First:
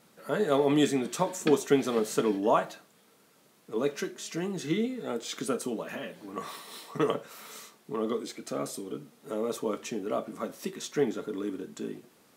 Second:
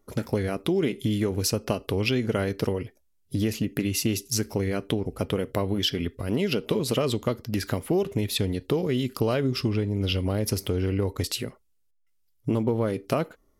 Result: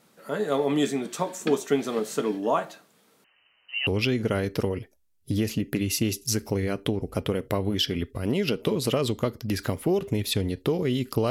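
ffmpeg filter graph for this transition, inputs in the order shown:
-filter_complex "[0:a]asettb=1/sr,asplit=3[a][b][c];[a]atrim=end=3.244[d];[b]atrim=start=3.24:end=3.87,asetpts=PTS-STARTPTS,afade=t=in:d=0.004:c=qsin,afade=t=out:st=0.626:d=0.004:c=qsin,lowpass=f=2.7k:t=q:w=0.5098,lowpass=f=2.7k:t=q:w=0.6013,lowpass=f=2.7k:t=q:w=0.9,lowpass=f=2.7k:t=q:w=2.563,afreqshift=-3200[e];[c]atrim=start=3.866[f];[d][e]acrossfade=d=0.004:c1=hsin:c2=qsin[g];[g][f]acrossfade=d=0.004:c1=qsin:c2=hsin,apad=whole_dur=11.3,atrim=end=11.3,atrim=end=3.872[h];[1:a]atrim=start=1.908:end=9.34[i];[h][i]acrossfade=d=0.004:c1=hsin:c2=hsin"

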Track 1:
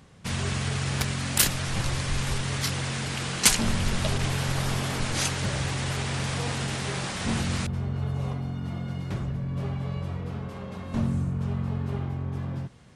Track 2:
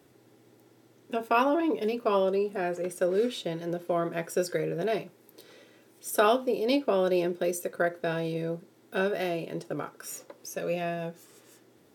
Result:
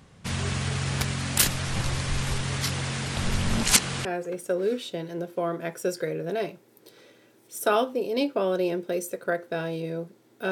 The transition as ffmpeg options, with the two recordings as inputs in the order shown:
-filter_complex "[0:a]apad=whole_dur=10.51,atrim=end=10.51,asplit=2[a][b];[a]atrim=end=3.172[c];[b]atrim=start=3.168:end=4.052,asetpts=PTS-STARTPTS,areverse[d];[1:a]atrim=start=2.568:end=9.03[e];[c][d]acrossfade=d=0.004:c1=hsin:c2=hsin[f];[f][e]acrossfade=d=0.004:c1=hsin:c2=hsin"

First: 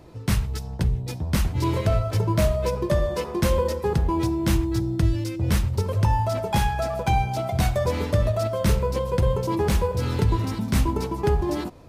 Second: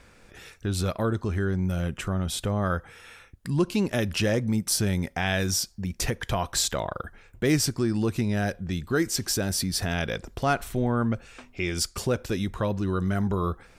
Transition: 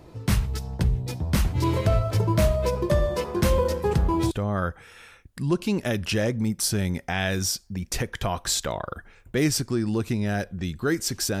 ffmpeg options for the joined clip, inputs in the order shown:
-filter_complex "[1:a]asplit=2[a][b];[0:a]apad=whole_dur=11.4,atrim=end=11.4,atrim=end=4.312[c];[b]atrim=start=2.388:end=9.48[d];[a]atrim=start=1.44:end=2.39,asetpts=PTS-STARTPTS,volume=-11dB,afade=t=in:d=0.004:c=hsin,afade=t=out:st=0.946:d=0.004:c=hsin,adelay=3360[e];[c][d]acrossfade=d=0.004:c1=hsin:c2=hsin[f];[f][e]amix=inputs=2:normalize=0"

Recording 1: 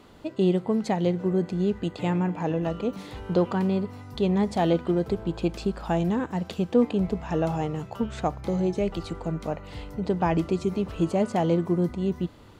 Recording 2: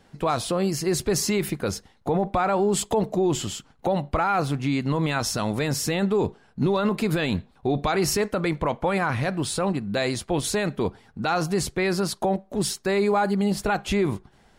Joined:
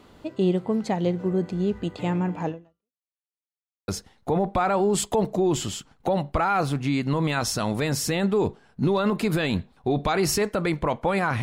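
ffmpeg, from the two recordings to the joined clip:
-filter_complex "[0:a]apad=whole_dur=11.42,atrim=end=11.42,asplit=2[a][b];[a]atrim=end=3.08,asetpts=PTS-STARTPTS,afade=t=out:st=2.48:d=0.6:c=exp[c];[b]atrim=start=3.08:end=3.88,asetpts=PTS-STARTPTS,volume=0[d];[1:a]atrim=start=1.67:end=9.21,asetpts=PTS-STARTPTS,afade=t=in:d=0.004:c=hsin[e];[c][d][e]concat=n=3:v=0:a=1"

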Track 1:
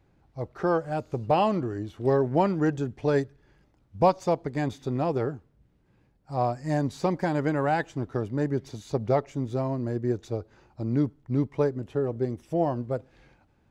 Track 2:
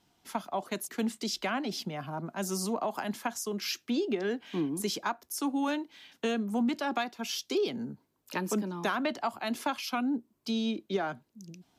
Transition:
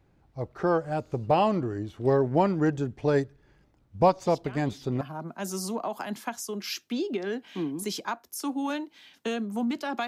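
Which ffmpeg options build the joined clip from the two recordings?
-filter_complex "[1:a]asplit=2[a][b];[0:a]apad=whole_dur=10.07,atrim=end=10.07,atrim=end=5.012[c];[b]atrim=start=1.988:end=7.05[d];[a]atrim=start=1.24:end=1.99,asetpts=PTS-STARTPTS,volume=-13.5dB,afade=t=in:d=0.004:c=hsin,afade=t=out:st=0.746:d=0.004:c=hsin,adelay=4260[e];[c][d]acrossfade=d=0.004:c1=hsin:c2=hsin[f];[f][e]amix=inputs=2:normalize=0"

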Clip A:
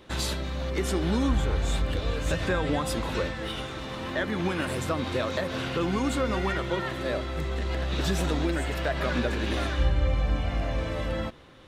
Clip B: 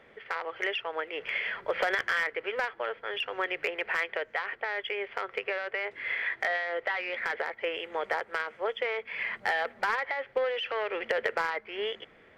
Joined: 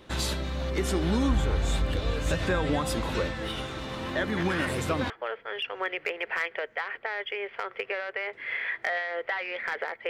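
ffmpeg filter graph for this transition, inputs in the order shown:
-filter_complex "[1:a]asplit=2[a][b];[0:a]apad=whole_dur=10.09,atrim=end=10.09,atrim=end=5.102[c];[b]atrim=start=2.678:end=7.67[d];[a]atrim=start=1.95:end=2.68,asetpts=PTS-STARTPTS,volume=-6.5dB,afade=t=in:d=0.004:c=hsin,afade=t=out:st=0.726:d=0.004:c=hsin,adelay=192717S[e];[c][d]acrossfade=d=0.004:c1=hsin:c2=hsin[f];[f][e]amix=inputs=2:normalize=0"

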